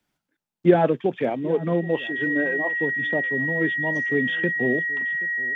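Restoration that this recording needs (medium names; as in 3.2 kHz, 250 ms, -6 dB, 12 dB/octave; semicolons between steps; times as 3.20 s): band-stop 1.9 kHz, Q 30; inverse comb 777 ms -20 dB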